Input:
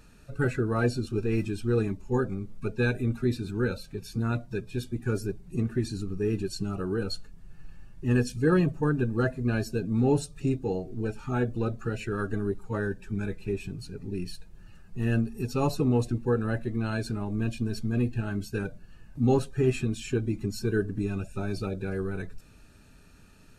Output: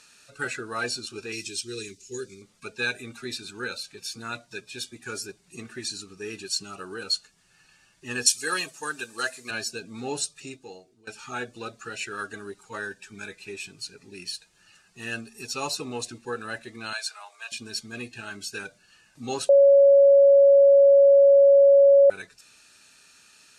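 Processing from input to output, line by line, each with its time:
1.32–2.42 EQ curve 110 Hz 0 dB, 270 Hz -5 dB, 400 Hz +3 dB, 720 Hz -29 dB, 2100 Hz -4 dB, 5800 Hz +8 dB, 9600 Hz +4 dB
8.26–9.51 RIAA curve recording
10.2–11.07 fade out, to -21.5 dB
16.93–17.52 steep high-pass 650 Hz
19.49–22.1 bleep 558 Hz -6.5 dBFS
whole clip: weighting filter ITU-R 468

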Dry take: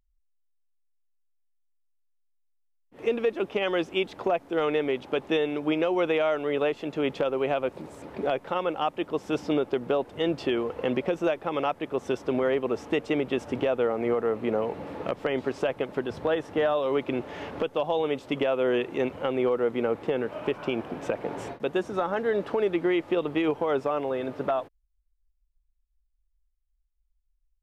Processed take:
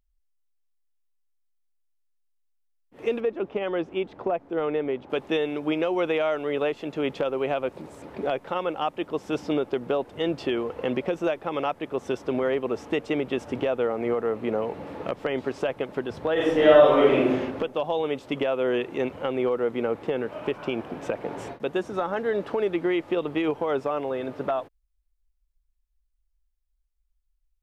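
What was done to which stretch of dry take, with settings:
3.2–5.1 LPF 1200 Hz 6 dB/oct
16.33–17.3 reverb throw, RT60 0.99 s, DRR -8.5 dB

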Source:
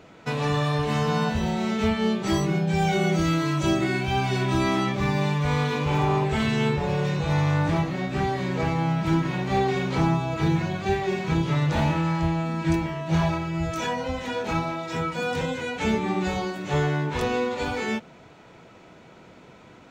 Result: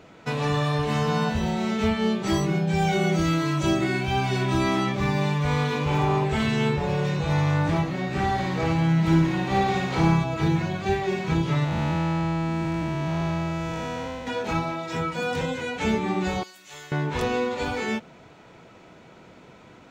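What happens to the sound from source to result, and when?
8.01–10.24 flutter echo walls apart 9.5 m, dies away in 0.76 s
11.64–14.27 time blur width 0.419 s
16.43–16.92 pre-emphasis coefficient 0.97

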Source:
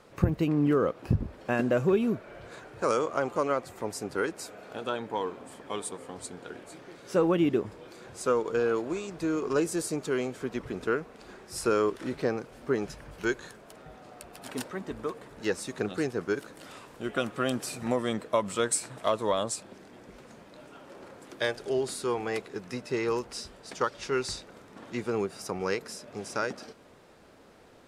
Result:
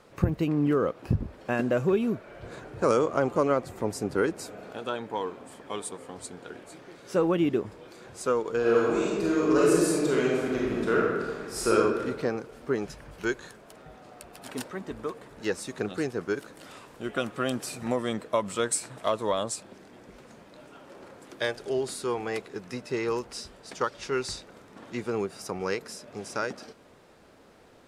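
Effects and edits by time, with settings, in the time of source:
2.42–4.71 low shelf 470 Hz +8.5 dB
8.59–11.73 reverb throw, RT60 1.5 s, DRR -5 dB

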